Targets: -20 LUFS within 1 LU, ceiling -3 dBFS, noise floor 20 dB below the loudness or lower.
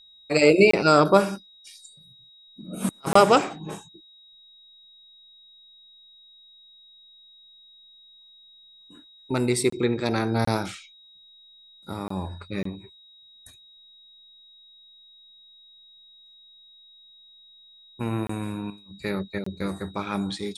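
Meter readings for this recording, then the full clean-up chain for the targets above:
dropouts 8; longest dropout 24 ms; steady tone 3.8 kHz; tone level -50 dBFS; loudness -23.5 LUFS; peak level -2.5 dBFS; loudness target -20.0 LUFS
-> interpolate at 0.71/3.13/9.70/10.45/12.08/12.63/18.27/19.44 s, 24 ms; band-stop 3.8 kHz, Q 30; trim +3.5 dB; peak limiter -3 dBFS

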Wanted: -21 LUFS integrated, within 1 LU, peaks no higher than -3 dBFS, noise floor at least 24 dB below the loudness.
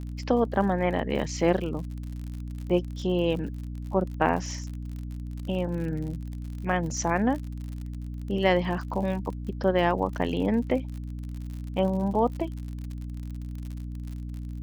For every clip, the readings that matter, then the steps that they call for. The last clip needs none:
tick rate 56 per s; hum 60 Hz; highest harmonic 300 Hz; hum level -33 dBFS; loudness -29.0 LUFS; peak level -7.0 dBFS; loudness target -21.0 LUFS
-> de-click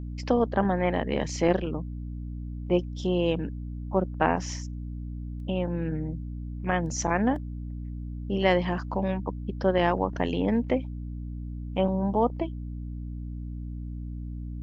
tick rate 0.27 per s; hum 60 Hz; highest harmonic 300 Hz; hum level -33 dBFS
-> hum notches 60/120/180/240/300 Hz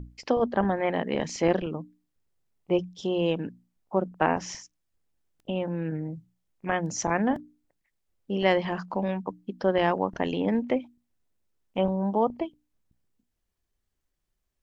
hum not found; loudness -28.0 LUFS; peak level -6.5 dBFS; loudness target -21.0 LUFS
-> trim +7 dB; peak limiter -3 dBFS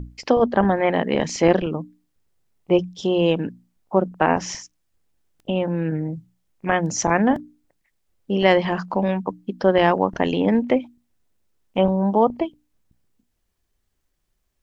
loudness -21.0 LUFS; peak level -3.0 dBFS; noise floor -72 dBFS

